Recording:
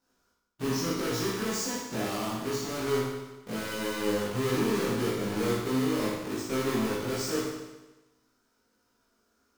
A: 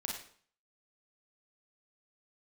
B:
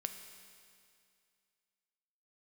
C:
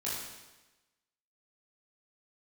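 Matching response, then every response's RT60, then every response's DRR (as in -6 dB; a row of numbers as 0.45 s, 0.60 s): C; 0.50 s, 2.3 s, 1.1 s; -1.5 dB, 6.0 dB, -8.5 dB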